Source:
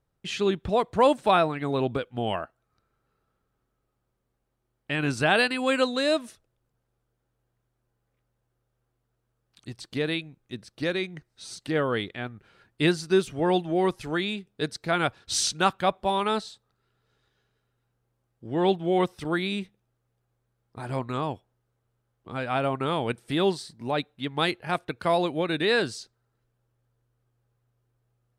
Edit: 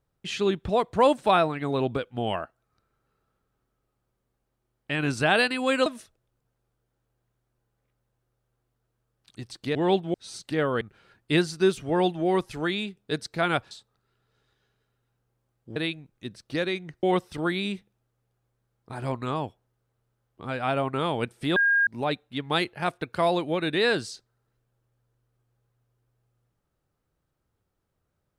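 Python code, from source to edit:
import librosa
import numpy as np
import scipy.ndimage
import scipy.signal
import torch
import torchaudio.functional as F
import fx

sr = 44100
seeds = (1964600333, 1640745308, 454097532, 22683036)

y = fx.edit(x, sr, fx.cut(start_s=5.86, length_s=0.29),
    fx.swap(start_s=10.04, length_s=1.27, other_s=18.51, other_length_s=0.39),
    fx.cut(start_s=11.98, length_s=0.33),
    fx.cut(start_s=15.21, length_s=1.25),
    fx.bleep(start_s=23.43, length_s=0.31, hz=1620.0, db=-18.0), tone=tone)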